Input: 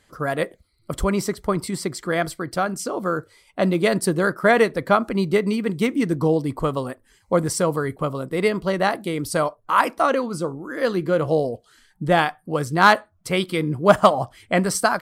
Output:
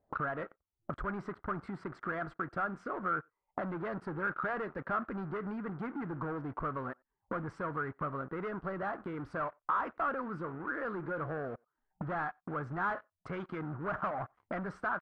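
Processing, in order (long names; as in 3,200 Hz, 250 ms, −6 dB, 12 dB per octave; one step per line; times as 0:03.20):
parametric band 500 Hz −4 dB 0.22 octaves
leveller curve on the samples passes 5
downward compressor 5 to 1, threshold −36 dBFS, peak gain reduction 26.5 dB
far-end echo of a speakerphone 90 ms, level −30 dB
envelope-controlled low-pass 670–1,400 Hz up, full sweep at −35.5 dBFS
level −6.5 dB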